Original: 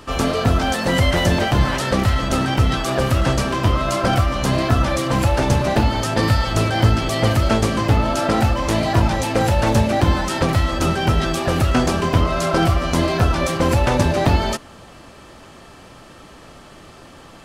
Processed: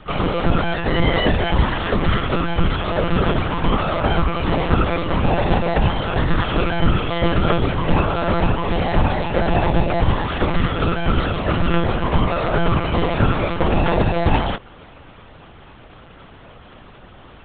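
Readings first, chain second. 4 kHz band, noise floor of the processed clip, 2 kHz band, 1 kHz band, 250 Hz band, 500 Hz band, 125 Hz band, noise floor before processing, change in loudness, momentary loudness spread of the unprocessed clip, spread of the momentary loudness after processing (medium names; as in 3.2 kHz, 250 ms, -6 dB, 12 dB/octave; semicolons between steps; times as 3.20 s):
-2.5 dB, -43 dBFS, -0.5 dB, -0.5 dB, -1.0 dB, -0.5 dB, -2.5 dB, -43 dBFS, -1.5 dB, 2 LU, 3 LU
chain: monotone LPC vocoder at 8 kHz 170 Hz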